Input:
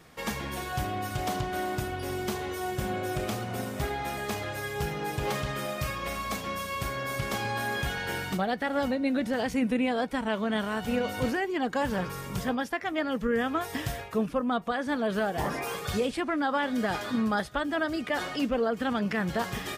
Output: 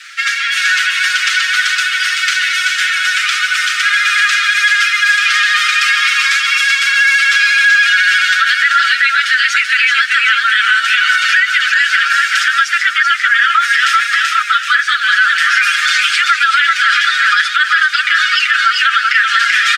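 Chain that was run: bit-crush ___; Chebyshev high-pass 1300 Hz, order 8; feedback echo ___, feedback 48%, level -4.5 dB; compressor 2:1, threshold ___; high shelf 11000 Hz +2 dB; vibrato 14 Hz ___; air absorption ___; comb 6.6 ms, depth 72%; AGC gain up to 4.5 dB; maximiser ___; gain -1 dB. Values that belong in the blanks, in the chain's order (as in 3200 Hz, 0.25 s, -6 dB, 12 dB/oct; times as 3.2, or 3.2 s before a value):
9-bit, 0.384 s, -38 dBFS, 27 cents, 110 m, +25.5 dB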